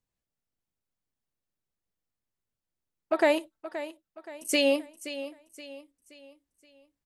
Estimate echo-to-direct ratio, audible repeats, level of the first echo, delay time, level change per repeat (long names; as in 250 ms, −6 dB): −12.0 dB, 3, −13.0 dB, 524 ms, −8.0 dB